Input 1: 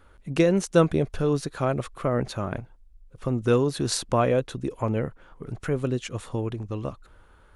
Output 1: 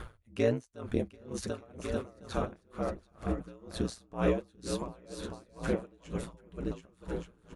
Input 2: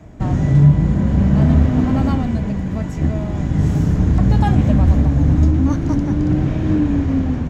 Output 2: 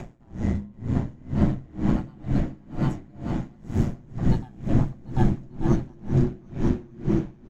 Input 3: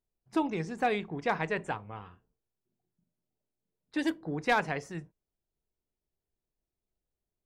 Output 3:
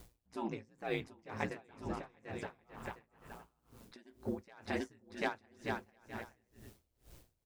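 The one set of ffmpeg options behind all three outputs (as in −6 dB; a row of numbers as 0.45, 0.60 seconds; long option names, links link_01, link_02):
-af "acompressor=mode=upward:threshold=-23dB:ratio=2.5,aeval=exprs='val(0)*sin(2*PI*59*n/s)':channel_layout=same,flanger=delay=5.5:depth=4.4:regen=-60:speed=1.4:shape=sinusoidal,aecho=1:1:740|1184|1450|1610|1706:0.631|0.398|0.251|0.158|0.1,aeval=exprs='val(0)*pow(10,-29*(0.5-0.5*cos(2*PI*2.1*n/s))/20)':channel_layout=same,volume=1.5dB"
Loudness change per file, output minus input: −10.5, −11.0, −10.5 LU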